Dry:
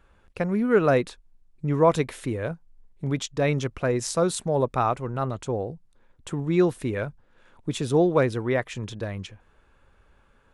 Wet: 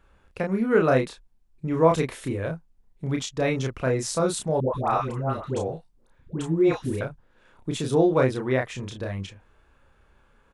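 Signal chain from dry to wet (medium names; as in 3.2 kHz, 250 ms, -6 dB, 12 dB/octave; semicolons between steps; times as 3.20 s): doubling 31 ms -3.5 dB; 4.60–7.01 s: phase dispersion highs, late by 139 ms, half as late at 820 Hz; trim -1.5 dB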